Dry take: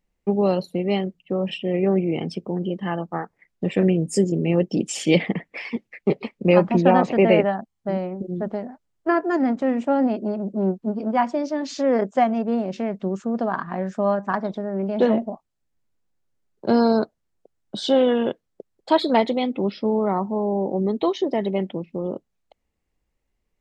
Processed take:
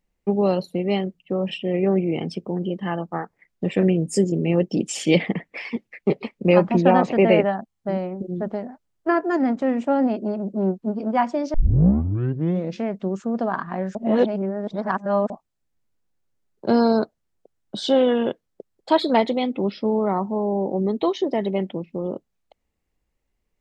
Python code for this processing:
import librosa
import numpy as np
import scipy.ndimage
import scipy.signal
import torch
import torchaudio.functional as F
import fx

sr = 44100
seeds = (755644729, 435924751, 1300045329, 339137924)

y = fx.edit(x, sr, fx.tape_start(start_s=11.54, length_s=1.29),
    fx.reverse_span(start_s=13.95, length_s=1.35), tone=tone)